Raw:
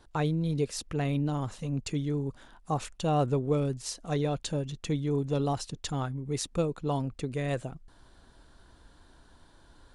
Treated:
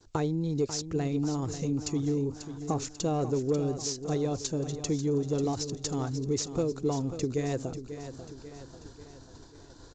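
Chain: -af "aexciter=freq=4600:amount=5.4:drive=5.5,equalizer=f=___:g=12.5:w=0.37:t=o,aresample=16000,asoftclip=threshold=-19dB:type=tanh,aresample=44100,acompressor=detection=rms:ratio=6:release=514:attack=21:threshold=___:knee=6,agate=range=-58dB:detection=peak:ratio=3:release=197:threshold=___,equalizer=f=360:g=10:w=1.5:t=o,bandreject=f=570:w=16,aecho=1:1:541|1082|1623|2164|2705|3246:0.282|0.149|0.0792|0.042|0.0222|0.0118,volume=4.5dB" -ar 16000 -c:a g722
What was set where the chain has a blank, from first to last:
97, -36dB, -49dB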